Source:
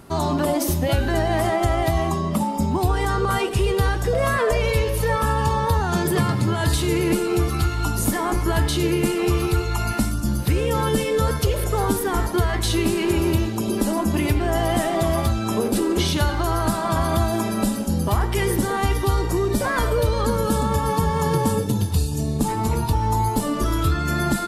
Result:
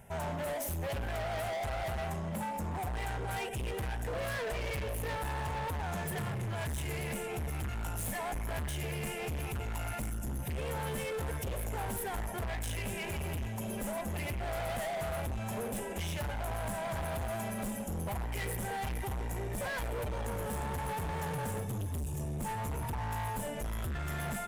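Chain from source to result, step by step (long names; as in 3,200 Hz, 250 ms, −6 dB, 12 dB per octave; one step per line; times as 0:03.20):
phaser with its sweep stopped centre 1,200 Hz, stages 6
gain into a clipping stage and back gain 28 dB
level −6 dB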